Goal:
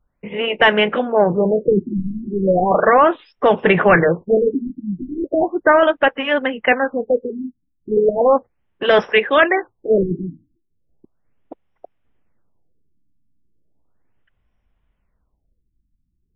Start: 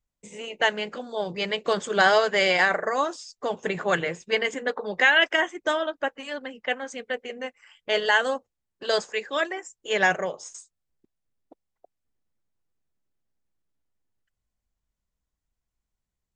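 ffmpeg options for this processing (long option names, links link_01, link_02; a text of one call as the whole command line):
ffmpeg -i in.wav -af "apsyclip=21dB,asuperstop=centerf=4500:order=4:qfactor=1.4,afftfilt=real='re*lt(b*sr/1024,320*pow(5800/320,0.5+0.5*sin(2*PI*0.36*pts/sr)))':imag='im*lt(b*sr/1024,320*pow(5800/320,0.5+0.5*sin(2*PI*0.36*pts/sr)))':win_size=1024:overlap=0.75,volume=-5dB" out.wav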